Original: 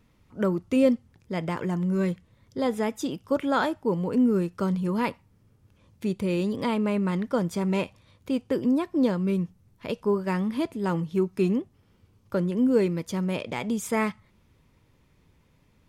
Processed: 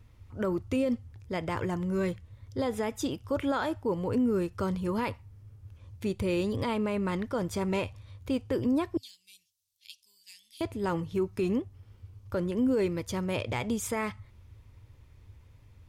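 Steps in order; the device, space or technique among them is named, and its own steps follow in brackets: 8.97–10.61 s: inverse Chebyshev high-pass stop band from 1.4 kHz, stop band 50 dB; car stereo with a boomy subwoofer (resonant low shelf 130 Hz +8 dB, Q 3; peak limiter -20 dBFS, peak gain reduction 10 dB)

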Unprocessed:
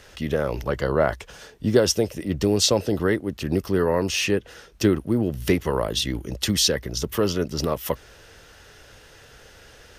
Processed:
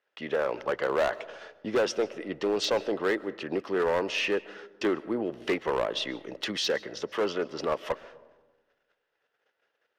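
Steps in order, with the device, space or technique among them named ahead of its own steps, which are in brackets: walkie-talkie (band-pass 440–2700 Hz; hard clipper -21 dBFS, distortion -11 dB; gate -48 dBFS, range -28 dB); algorithmic reverb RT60 1.3 s, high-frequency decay 0.3×, pre-delay 95 ms, DRR 19 dB

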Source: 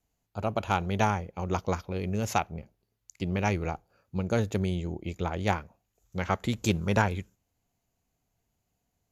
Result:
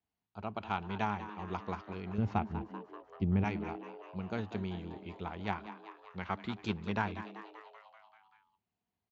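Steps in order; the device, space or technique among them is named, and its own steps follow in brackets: 2.18–3.44 s: tilt EQ -4 dB/octave; frequency-shifting delay pedal into a guitar cabinet (frequency-shifting echo 193 ms, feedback 63%, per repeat +110 Hz, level -13 dB; cabinet simulation 100–4300 Hz, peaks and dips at 140 Hz -10 dB, 200 Hz +3 dB, 290 Hz -3 dB, 540 Hz -9 dB, 1 kHz +3 dB); trim -8 dB

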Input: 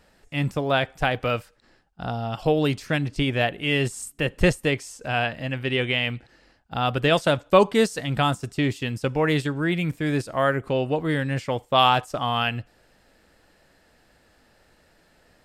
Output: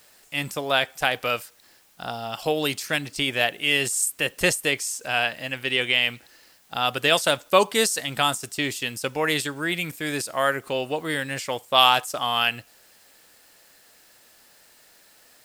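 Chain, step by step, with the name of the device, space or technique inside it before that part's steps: turntable without a phono preamp (RIAA curve recording; white noise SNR 33 dB)

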